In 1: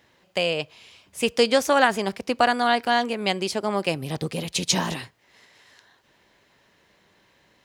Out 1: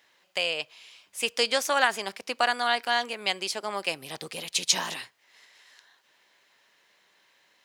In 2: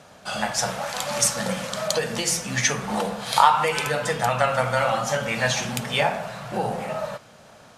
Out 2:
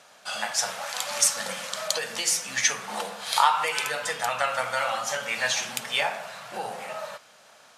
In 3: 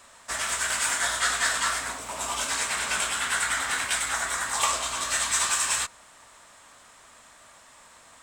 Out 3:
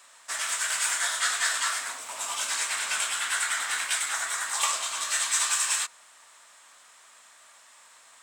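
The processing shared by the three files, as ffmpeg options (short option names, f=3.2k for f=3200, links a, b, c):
-af "highpass=f=1.3k:p=1"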